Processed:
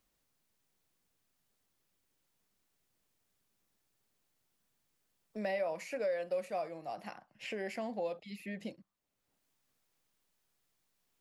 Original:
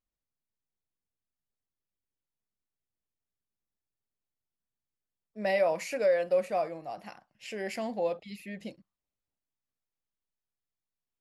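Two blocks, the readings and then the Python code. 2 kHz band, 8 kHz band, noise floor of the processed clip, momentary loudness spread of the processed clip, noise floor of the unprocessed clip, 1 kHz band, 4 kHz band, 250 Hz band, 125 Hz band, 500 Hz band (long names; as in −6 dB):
−6.0 dB, −8.5 dB, −80 dBFS, 11 LU, below −85 dBFS, −6.5 dB, −5.5 dB, −3.5 dB, −4.0 dB, −8.0 dB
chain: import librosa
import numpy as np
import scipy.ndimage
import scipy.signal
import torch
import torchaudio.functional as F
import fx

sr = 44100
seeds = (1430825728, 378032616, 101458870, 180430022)

y = fx.band_squash(x, sr, depth_pct=70)
y = y * librosa.db_to_amplitude(-7.0)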